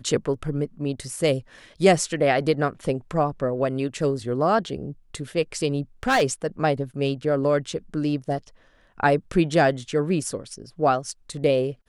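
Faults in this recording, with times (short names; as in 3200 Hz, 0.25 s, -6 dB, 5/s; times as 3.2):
6.03–6.23 clipped -15.5 dBFS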